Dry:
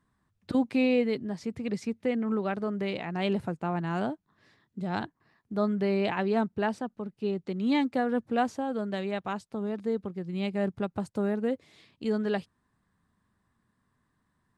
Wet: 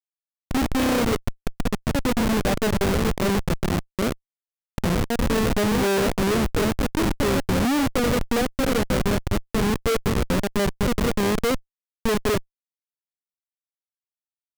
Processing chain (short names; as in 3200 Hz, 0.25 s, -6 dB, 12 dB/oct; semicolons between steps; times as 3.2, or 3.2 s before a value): echoes that change speed 0.113 s, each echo +2 st, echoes 2, each echo -6 dB; low-pass sweep 4300 Hz -> 510 Hz, 0.18–2.84; pre-echo 0.219 s -22 dB; Schmitt trigger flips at -25.5 dBFS; gain +6.5 dB